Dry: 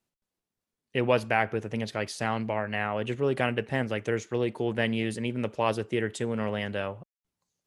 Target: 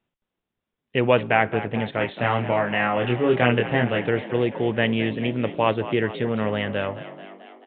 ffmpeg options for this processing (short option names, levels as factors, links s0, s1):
-filter_complex "[0:a]asettb=1/sr,asplit=3[s0][s1][s2];[s0]atrim=end=1.984[s3];[s1]atrim=start=1.98:end=4.09,asetpts=PTS-STARTPTS,afade=t=in:d=0.004:c=qsin,afade=t=out:st=2.106:d=0.004:c=qsin,asplit=2[s4][s5];[s5]adelay=25,volume=0.794[s6];[s4][s6]amix=inputs=2:normalize=0,atrim=end_sample=93051[s7];[s2]atrim=start=4.086[s8];[s3][s7]acrossfade=d=0.004:c1=hsin:c2=qsin[s9];[s9][s8]acrossfade=d=0.004:c1=qsin:c2=hsin,asplit=8[s10][s11][s12][s13][s14][s15][s16][s17];[s11]adelay=218,afreqshift=45,volume=0.2[s18];[s12]adelay=436,afreqshift=90,volume=0.127[s19];[s13]adelay=654,afreqshift=135,volume=0.0813[s20];[s14]adelay=872,afreqshift=180,volume=0.0525[s21];[s15]adelay=1090,afreqshift=225,volume=0.0335[s22];[s16]adelay=1308,afreqshift=270,volume=0.0214[s23];[s17]adelay=1526,afreqshift=315,volume=0.0136[s24];[s10][s18][s19][s20][s21][s22][s23][s24]amix=inputs=8:normalize=0,aresample=8000,aresample=44100,volume=1.88"